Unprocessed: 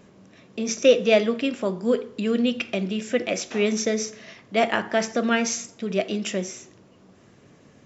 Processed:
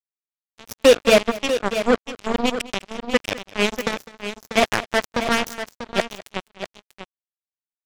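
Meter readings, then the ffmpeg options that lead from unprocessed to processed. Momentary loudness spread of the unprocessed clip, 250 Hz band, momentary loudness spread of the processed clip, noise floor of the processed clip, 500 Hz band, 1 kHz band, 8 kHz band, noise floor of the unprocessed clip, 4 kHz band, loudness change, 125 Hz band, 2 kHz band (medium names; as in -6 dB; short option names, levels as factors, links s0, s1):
11 LU, -1.5 dB, 17 LU, under -85 dBFS, +2.0 dB, +5.0 dB, no reading, -54 dBFS, +5.0 dB, +2.5 dB, -1.5 dB, +4.5 dB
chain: -af "acrusher=bits=2:mix=0:aa=0.5,aecho=1:1:204|642:0.112|0.316,volume=1.41"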